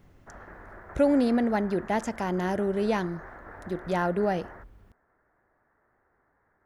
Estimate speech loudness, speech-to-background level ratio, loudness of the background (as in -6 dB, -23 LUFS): -27.0 LUFS, 18.5 dB, -45.5 LUFS